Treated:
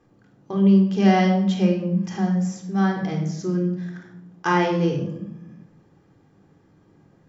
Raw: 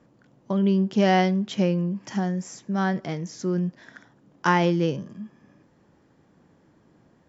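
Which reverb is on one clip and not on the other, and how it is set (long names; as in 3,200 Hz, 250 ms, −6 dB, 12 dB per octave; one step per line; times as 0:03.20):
rectangular room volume 2,400 cubic metres, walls furnished, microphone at 3.8 metres
level −3 dB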